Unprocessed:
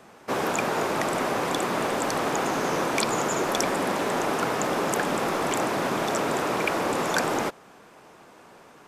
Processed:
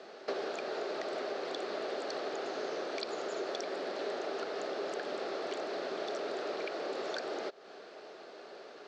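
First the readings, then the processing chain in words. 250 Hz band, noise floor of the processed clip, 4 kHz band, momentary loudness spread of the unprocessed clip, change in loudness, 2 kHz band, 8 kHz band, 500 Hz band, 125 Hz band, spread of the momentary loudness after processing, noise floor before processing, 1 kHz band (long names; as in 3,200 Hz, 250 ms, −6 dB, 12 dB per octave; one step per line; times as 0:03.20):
−15.0 dB, −51 dBFS, −10.0 dB, 1 LU, −12.0 dB, −14.0 dB, −21.0 dB, −8.5 dB, below −25 dB, 12 LU, −51 dBFS, −15.0 dB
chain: downward compressor 16 to 1, threshold −35 dBFS, peak gain reduction 16 dB
loudspeaker in its box 370–5,500 Hz, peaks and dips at 400 Hz +9 dB, 620 Hz +6 dB, 980 Hz −10 dB, 2,300 Hz −3 dB, 4,300 Hz +9 dB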